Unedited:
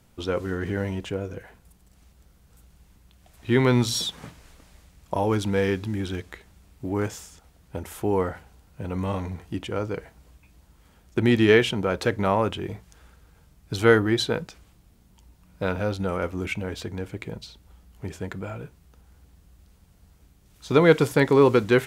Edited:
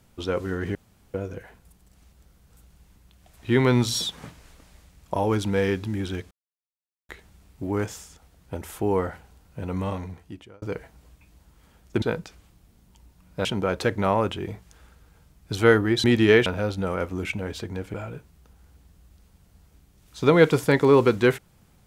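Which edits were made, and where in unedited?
0:00.75–0:01.14: fill with room tone
0:06.31: splice in silence 0.78 s
0:09.01–0:09.84: fade out
0:11.24–0:11.66: swap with 0:14.25–0:15.68
0:17.16–0:18.42: remove

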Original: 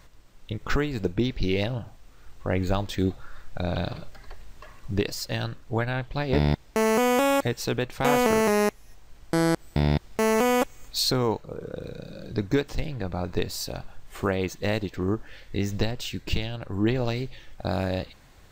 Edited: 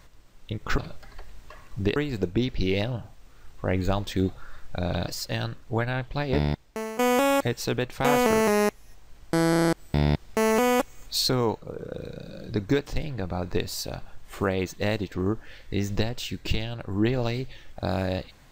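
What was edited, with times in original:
0:03.90–0:05.08: move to 0:00.78
0:06.21–0:06.99: fade out, to −17.5 dB
0:09.50: stutter 0.03 s, 7 plays

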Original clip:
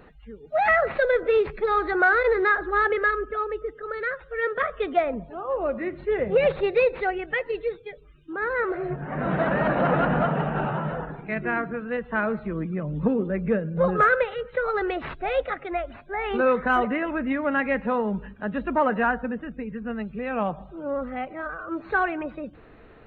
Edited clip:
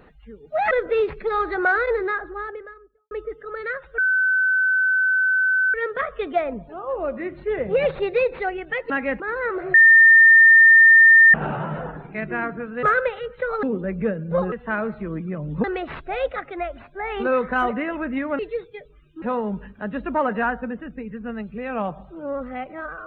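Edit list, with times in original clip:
0:00.71–0:01.08: remove
0:01.98–0:03.48: fade out and dull
0:04.35: insert tone 1,520 Hz −16 dBFS 1.76 s
0:07.51–0:08.34: swap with 0:17.53–0:17.83
0:08.88–0:10.48: beep over 1,810 Hz −7.5 dBFS
0:11.97–0:13.09: swap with 0:13.98–0:14.78

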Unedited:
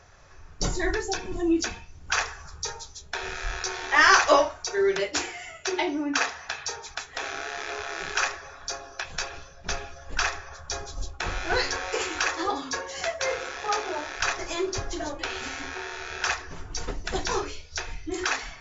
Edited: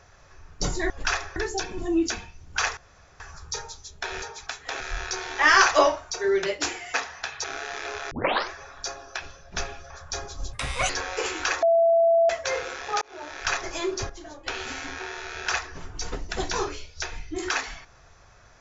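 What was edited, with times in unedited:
0:02.31: splice in room tone 0.43 s
0:05.47–0:06.20: remove
0:06.70–0:07.28: move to 0:03.33
0:07.95: tape start 0.40 s
0:09.06–0:09.34: remove
0:10.02–0:10.48: move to 0:00.90
0:11.11–0:11.65: play speed 148%
0:12.38–0:13.05: beep over 668 Hz −15.5 dBFS
0:13.77–0:14.21: fade in
0:14.85–0:15.22: clip gain −10 dB

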